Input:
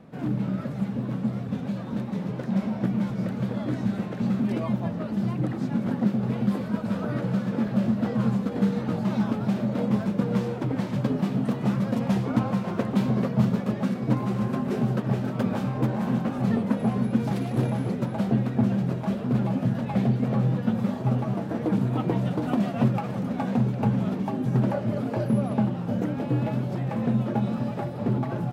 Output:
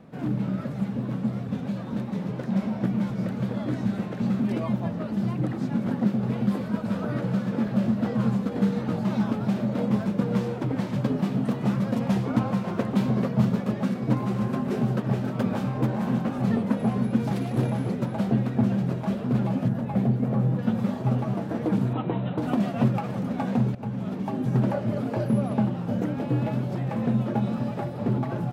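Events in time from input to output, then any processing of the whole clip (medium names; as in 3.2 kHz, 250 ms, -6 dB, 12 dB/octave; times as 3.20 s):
19.68–20.59 s: peaking EQ 4.2 kHz -8 dB 2.7 oct
21.93–22.38 s: rippled Chebyshev low-pass 4 kHz, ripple 3 dB
23.75–24.38 s: fade in, from -13 dB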